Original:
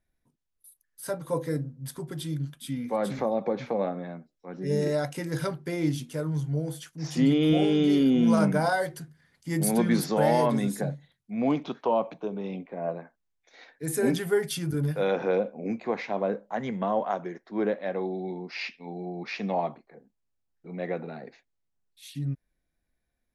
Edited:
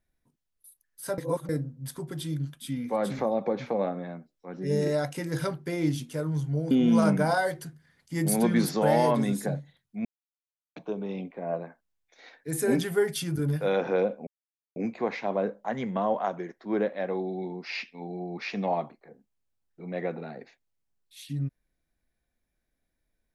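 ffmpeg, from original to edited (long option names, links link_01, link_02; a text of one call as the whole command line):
ffmpeg -i in.wav -filter_complex "[0:a]asplit=7[link_01][link_02][link_03][link_04][link_05][link_06][link_07];[link_01]atrim=end=1.182[link_08];[link_02]atrim=start=1.178:end=1.492,asetpts=PTS-STARTPTS,areverse[link_09];[link_03]atrim=start=1.488:end=6.712[link_10];[link_04]atrim=start=8.058:end=11.4,asetpts=PTS-STARTPTS,afade=type=out:start_time=3.338:duration=0.004:curve=hsin[link_11];[link_05]atrim=start=11.4:end=12.11,asetpts=PTS-STARTPTS,volume=0[link_12];[link_06]atrim=start=12.11:end=15.62,asetpts=PTS-STARTPTS,afade=type=in:duration=0.004:curve=hsin,afade=type=out:start_time=3.506:duration=0.004:curve=hsin,apad=pad_dur=0.49[link_13];[link_07]atrim=start=15.62,asetpts=PTS-STARTPTS,afade=type=in:duration=0.004:curve=hsin[link_14];[link_08][link_09]acrossfade=duration=0.004:curve1=hsin:curve2=hsin[link_15];[link_15][link_10]acrossfade=duration=0.004:curve1=hsin:curve2=hsin[link_16];[link_11][link_12][link_13][link_14]concat=n=4:v=0:a=1[link_17];[link_16][link_17]acrossfade=duration=0.004:curve1=hsin:curve2=hsin" out.wav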